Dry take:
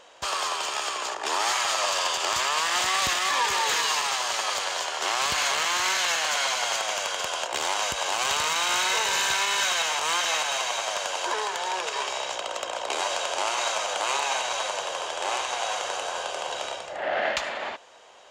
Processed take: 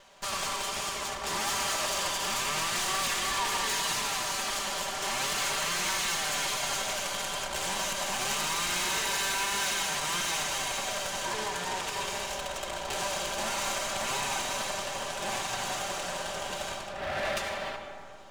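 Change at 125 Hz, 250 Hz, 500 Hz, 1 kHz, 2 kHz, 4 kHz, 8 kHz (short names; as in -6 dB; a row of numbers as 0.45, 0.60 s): +7.0, +3.0, -4.5, -6.0, -5.0, -5.0, -3.0 dB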